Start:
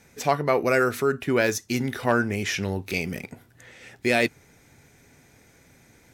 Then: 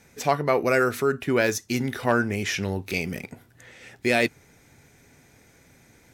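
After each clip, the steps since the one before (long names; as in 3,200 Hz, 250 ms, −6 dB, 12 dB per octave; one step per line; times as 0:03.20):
no processing that can be heard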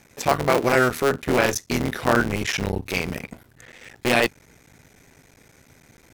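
sub-harmonics by changed cycles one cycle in 3, muted
level +4 dB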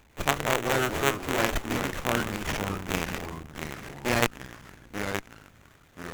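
delay with pitch and tempo change per echo 122 ms, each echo −3 semitones, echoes 3, each echo −6 dB
first-order pre-emphasis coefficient 0.8
windowed peak hold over 9 samples
level +2 dB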